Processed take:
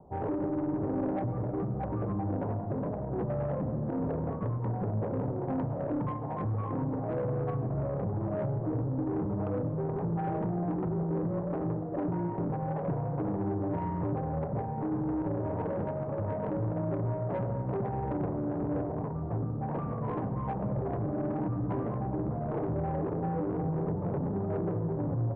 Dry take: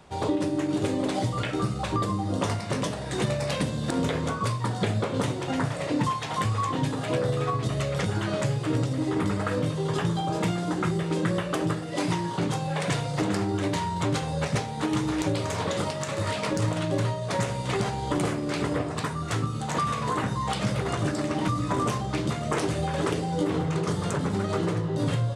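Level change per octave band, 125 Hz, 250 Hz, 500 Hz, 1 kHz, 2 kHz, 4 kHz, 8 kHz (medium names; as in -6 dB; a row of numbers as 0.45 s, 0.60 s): -4.0 dB, -4.0 dB, -4.0 dB, -7.5 dB, -18.0 dB, under -35 dB, under -40 dB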